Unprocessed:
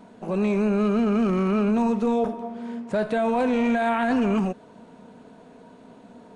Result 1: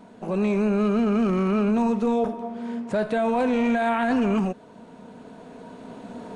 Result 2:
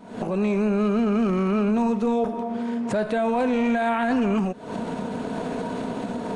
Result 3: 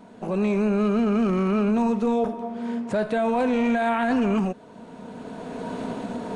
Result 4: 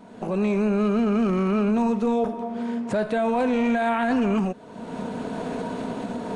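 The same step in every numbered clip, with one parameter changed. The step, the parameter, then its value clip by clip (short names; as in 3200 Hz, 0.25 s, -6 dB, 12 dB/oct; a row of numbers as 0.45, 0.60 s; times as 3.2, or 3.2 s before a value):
recorder AGC, rising by: 5.4, 88, 14, 35 dB/s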